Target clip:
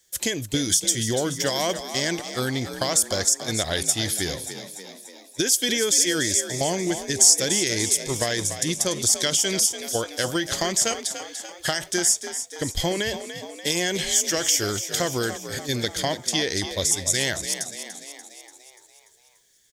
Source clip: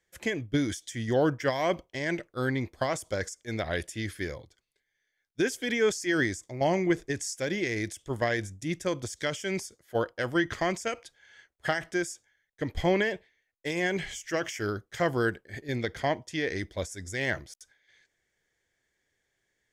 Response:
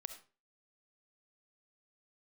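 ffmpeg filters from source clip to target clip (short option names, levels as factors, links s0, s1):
-filter_complex "[0:a]acompressor=threshold=0.0447:ratio=6,aexciter=amount=4.9:drive=6.1:freq=3200,asplit=2[s0][s1];[s1]asplit=7[s2][s3][s4][s5][s6][s7][s8];[s2]adelay=291,afreqshift=50,volume=0.299[s9];[s3]adelay=582,afreqshift=100,volume=0.174[s10];[s4]adelay=873,afreqshift=150,volume=0.1[s11];[s5]adelay=1164,afreqshift=200,volume=0.0582[s12];[s6]adelay=1455,afreqshift=250,volume=0.0339[s13];[s7]adelay=1746,afreqshift=300,volume=0.0195[s14];[s8]adelay=2037,afreqshift=350,volume=0.0114[s15];[s9][s10][s11][s12][s13][s14][s15]amix=inputs=7:normalize=0[s16];[s0][s16]amix=inputs=2:normalize=0,volume=1.78"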